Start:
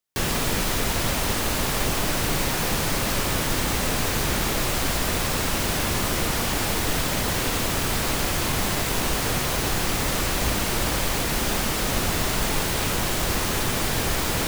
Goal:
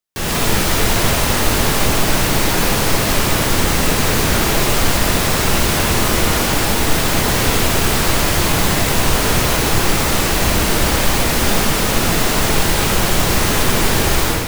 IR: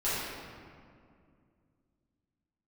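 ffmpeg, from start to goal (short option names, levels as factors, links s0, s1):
-filter_complex "[0:a]dynaudnorm=f=100:g=5:m=3.16,asplit=2[s0][s1];[1:a]atrim=start_sample=2205[s2];[s1][s2]afir=irnorm=-1:irlink=0,volume=0.211[s3];[s0][s3]amix=inputs=2:normalize=0,volume=0.75"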